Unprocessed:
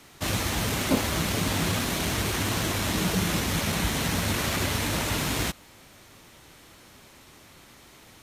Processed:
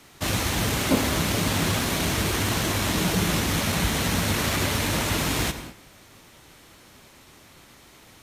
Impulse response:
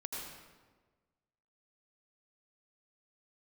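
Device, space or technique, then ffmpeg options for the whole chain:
keyed gated reverb: -filter_complex "[0:a]asplit=3[link_01][link_02][link_03];[1:a]atrim=start_sample=2205[link_04];[link_02][link_04]afir=irnorm=-1:irlink=0[link_05];[link_03]apad=whole_len=362507[link_06];[link_05][link_06]sidechaingate=range=-33dB:threshold=-49dB:ratio=16:detection=peak,volume=-6.5dB[link_07];[link_01][link_07]amix=inputs=2:normalize=0"

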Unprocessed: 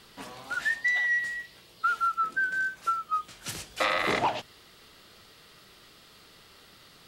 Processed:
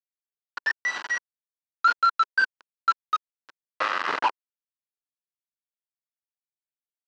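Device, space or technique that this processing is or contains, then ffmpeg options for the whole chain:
hand-held game console: -af "acrusher=bits=3:mix=0:aa=0.000001,highpass=400,equalizer=frequency=410:width_type=q:width=4:gain=-3,equalizer=frequency=700:width_type=q:width=4:gain=-6,equalizer=frequency=1000:width_type=q:width=4:gain=6,equalizer=frequency=1500:width_type=q:width=4:gain=8,equalizer=frequency=2200:width_type=q:width=4:gain=-7,equalizer=frequency=3600:width_type=q:width=4:gain=-9,lowpass=frequency=4100:width=0.5412,lowpass=frequency=4100:width=1.3066"

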